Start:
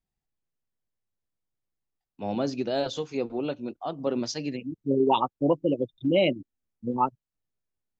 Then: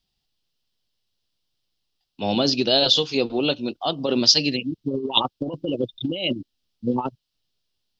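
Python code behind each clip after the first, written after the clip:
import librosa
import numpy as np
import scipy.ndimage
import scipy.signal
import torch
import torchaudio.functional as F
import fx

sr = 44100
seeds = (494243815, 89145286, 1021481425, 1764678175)

y = fx.over_compress(x, sr, threshold_db=-26.0, ratio=-0.5)
y = fx.band_shelf(y, sr, hz=3900.0, db=14.5, octaves=1.2)
y = y * 10.0 ** (4.5 / 20.0)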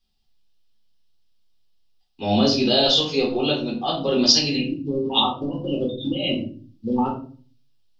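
y = fx.room_shoebox(x, sr, seeds[0], volume_m3=310.0, walls='furnished', distance_m=3.9)
y = y * 10.0 ** (-5.5 / 20.0)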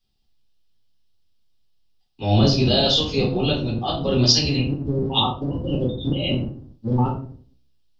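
y = fx.octave_divider(x, sr, octaves=1, level_db=3.0)
y = y * 10.0 ** (-1.0 / 20.0)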